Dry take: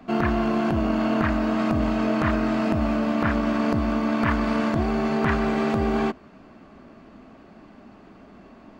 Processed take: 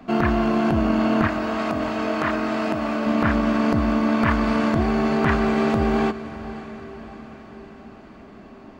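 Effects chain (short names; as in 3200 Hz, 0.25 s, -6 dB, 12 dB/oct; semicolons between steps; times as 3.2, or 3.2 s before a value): 1.27–3.06 HPF 370 Hz 6 dB/oct; on a send: diffused feedback echo 0.608 s, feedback 55%, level -15 dB; on the sum: gain +2.5 dB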